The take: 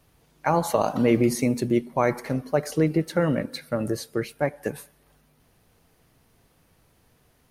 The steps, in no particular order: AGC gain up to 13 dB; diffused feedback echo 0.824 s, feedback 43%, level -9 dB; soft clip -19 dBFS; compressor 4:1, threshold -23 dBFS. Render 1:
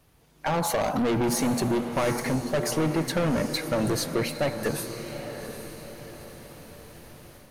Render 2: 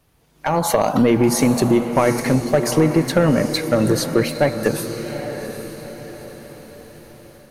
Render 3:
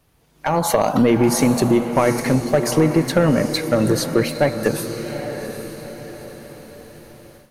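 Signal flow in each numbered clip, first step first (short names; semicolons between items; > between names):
AGC > soft clip > compressor > diffused feedback echo; compressor > soft clip > AGC > diffused feedback echo; compressor > soft clip > diffused feedback echo > AGC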